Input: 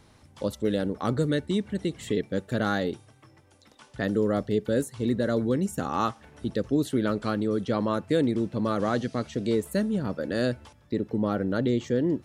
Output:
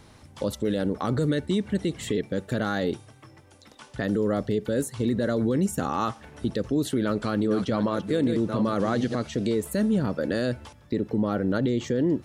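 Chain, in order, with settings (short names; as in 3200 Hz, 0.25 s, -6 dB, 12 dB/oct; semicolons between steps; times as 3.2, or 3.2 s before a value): 7.03–9.15 reverse delay 0.403 s, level -9 dB; limiter -20.5 dBFS, peak gain reduction 8.5 dB; gain +5 dB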